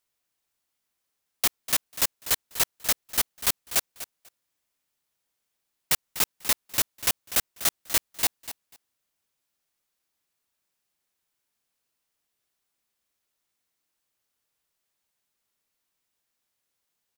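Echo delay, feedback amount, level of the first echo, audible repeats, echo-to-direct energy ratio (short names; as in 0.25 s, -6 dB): 0.246 s, 15%, -14.0 dB, 2, -14.0 dB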